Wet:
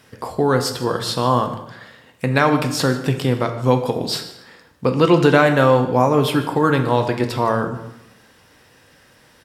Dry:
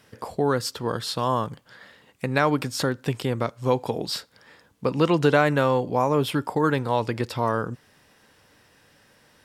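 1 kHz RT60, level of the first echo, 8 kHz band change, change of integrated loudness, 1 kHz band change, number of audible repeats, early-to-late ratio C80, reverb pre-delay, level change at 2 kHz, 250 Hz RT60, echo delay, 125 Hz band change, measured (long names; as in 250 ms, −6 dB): 0.85 s, −19.0 dB, +6.0 dB, +6.5 dB, +6.0 dB, 1, 11.5 dB, 5 ms, +6.0 dB, 0.95 s, 152 ms, +7.0 dB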